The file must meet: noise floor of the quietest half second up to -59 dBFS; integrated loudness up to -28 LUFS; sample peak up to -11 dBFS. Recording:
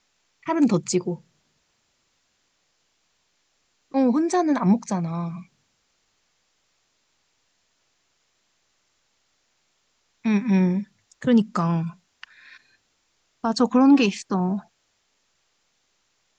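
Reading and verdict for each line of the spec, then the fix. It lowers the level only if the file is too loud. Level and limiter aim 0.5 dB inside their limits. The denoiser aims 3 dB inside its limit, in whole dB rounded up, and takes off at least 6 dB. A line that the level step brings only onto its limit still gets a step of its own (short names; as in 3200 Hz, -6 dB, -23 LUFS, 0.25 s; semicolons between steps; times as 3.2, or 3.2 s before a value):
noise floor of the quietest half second -70 dBFS: OK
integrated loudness -22.5 LUFS: fail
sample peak -7.0 dBFS: fail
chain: gain -6 dB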